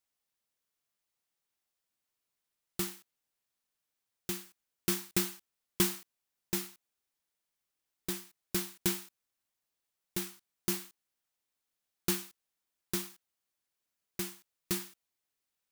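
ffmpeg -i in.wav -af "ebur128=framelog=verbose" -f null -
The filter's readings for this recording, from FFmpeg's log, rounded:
Integrated loudness:
  I:         -35.8 LUFS
  Threshold: -46.6 LUFS
Loudness range:
  LRA:        10.6 LU
  Threshold: -58.6 LUFS
  LRA low:   -46.0 LUFS
  LRA high:  -35.4 LUFS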